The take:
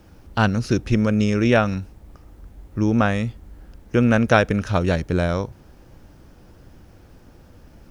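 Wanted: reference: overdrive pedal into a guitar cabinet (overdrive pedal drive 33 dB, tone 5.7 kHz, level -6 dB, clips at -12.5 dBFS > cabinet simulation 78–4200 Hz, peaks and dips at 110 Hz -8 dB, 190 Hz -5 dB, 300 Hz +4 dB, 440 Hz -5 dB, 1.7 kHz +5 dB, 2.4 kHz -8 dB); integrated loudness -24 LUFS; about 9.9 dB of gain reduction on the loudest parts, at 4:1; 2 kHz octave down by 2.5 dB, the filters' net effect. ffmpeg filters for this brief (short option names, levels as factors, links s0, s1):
-filter_complex "[0:a]equalizer=f=2000:t=o:g=-6.5,acompressor=threshold=0.0631:ratio=4,asplit=2[s0][s1];[s1]highpass=f=720:p=1,volume=44.7,asoftclip=type=tanh:threshold=0.237[s2];[s0][s2]amix=inputs=2:normalize=0,lowpass=f=5700:p=1,volume=0.501,highpass=78,equalizer=f=110:t=q:w=4:g=-8,equalizer=f=190:t=q:w=4:g=-5,equalizer=f=300:t=q:w=4:g=4,equalizer=f=440:t=q:w=4:g=-5,equalizer=f=1700:t=q:w=4:g=5,equalizer=f=2400:t=q:w=4:g=-8,lowpass=f=4200:w=0.5412,lowpass=f=4200:w=1.3066,volume=1.06"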